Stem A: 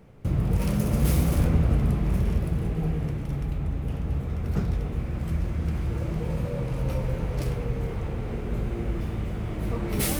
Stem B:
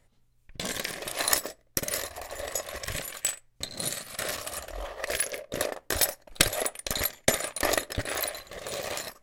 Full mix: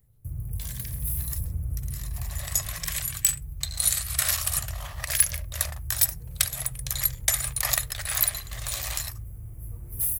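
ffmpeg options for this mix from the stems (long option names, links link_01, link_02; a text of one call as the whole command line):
ffmpeg -i stem1.wav -i stem2.wav -filter_complex "[0:a]firequalizer=gain_entry='entry(120,0);entry(180,-17);entry(3500,-23);entry(11000,15)':delay=0.05:min_phase=1,acontrast=62,volume=-14dB[link_01];[1:a]highpass=frequency=790:width=0.5412,highpass=frequency=790:width=1.3066,aemphasis=mode=production:type=50kf,dynaudnorm=framelen=100:gausssize=11:maxgain=6dB,volume=-3dB,afade=type=in:start_time=1.92:duration=0.31:silence=0.223872[link_02];[link_01][link_02]amix=inputs=2:normalize=0" out.wav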